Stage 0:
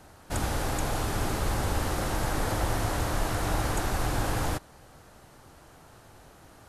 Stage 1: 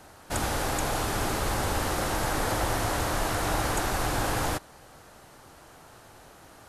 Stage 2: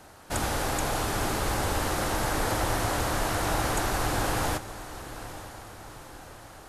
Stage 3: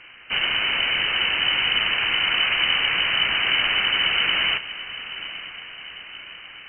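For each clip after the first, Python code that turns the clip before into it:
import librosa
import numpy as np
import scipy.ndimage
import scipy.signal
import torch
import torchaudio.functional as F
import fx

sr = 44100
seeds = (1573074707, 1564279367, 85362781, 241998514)

y1 = fx.low_shelf(x, sr, hz=250.0, db=-6.5)
y1 = y1 * librosa.db_to_amplitude(3.5)
y2 = fx.echo_diffused(y1, sr, ms=926, feedback_pct=51, wet_db=-14)
y3 = fx.freq_invert(y2, sr, carrier_hz=3000)
y3 = y3 * librosa.db_to_amplitude(5.5)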